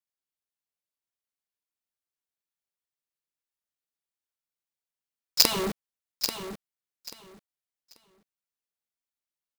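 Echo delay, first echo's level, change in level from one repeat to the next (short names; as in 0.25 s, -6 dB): 0.837 s, -9.0 dB, -14.0 dB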